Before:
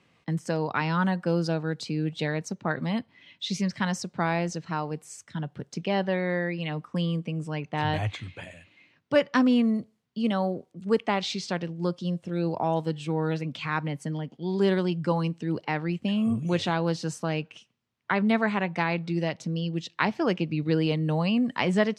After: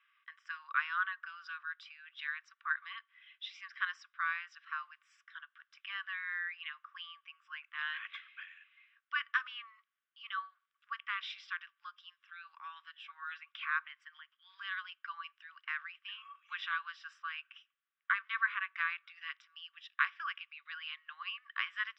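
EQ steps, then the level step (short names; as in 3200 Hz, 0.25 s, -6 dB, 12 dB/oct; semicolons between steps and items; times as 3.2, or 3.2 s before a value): polynomial smoothing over 25 samples; rippled Chebyshev high-pass 1100 Hz, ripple 6 dB; air absorption 140 m; +2.0 dB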